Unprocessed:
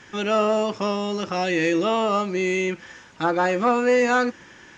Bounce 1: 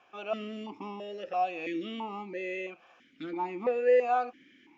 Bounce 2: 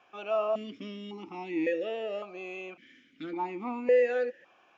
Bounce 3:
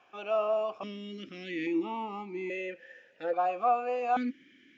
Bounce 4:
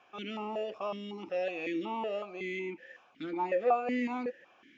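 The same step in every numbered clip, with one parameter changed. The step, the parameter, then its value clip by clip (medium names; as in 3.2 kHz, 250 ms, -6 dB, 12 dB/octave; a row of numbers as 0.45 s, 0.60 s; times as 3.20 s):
stepped vowel filter, rate: 3 Hz, 1.8 Hz, 1.2 Hz, 5.4 Hz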